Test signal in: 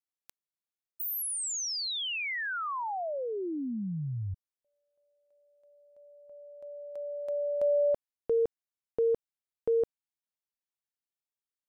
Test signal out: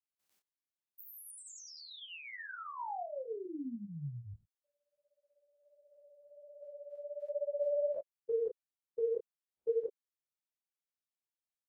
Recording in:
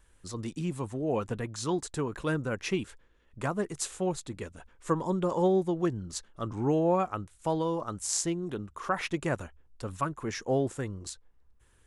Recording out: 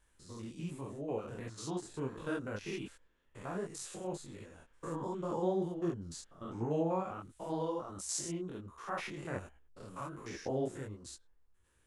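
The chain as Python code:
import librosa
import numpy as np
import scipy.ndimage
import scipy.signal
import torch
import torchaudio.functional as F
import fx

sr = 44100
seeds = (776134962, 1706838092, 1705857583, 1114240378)

y = fx.spec_steps(x, sr, hold_ms=100)
y = fx.low_shelf(y, sr, hz=140.0, db=-4.5)
y = fx.detune_double(y, sr, cents=47)
y = F.gain(torch.from_numpy(y), -1.5).numpy()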